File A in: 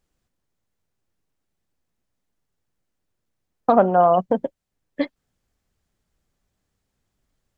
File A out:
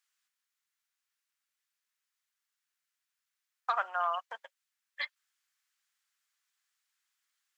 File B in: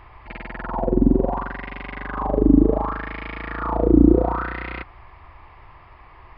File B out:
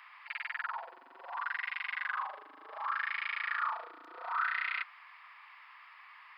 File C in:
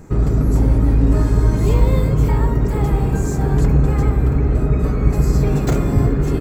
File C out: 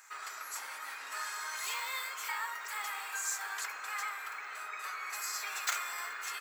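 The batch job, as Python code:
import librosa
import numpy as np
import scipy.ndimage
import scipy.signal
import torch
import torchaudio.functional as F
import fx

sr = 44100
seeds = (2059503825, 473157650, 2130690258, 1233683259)

y = scipy.signal.sosfilt(scipy.signal.butter(4, 1300.0, 'highpass', fs=sr, output='sos'), x)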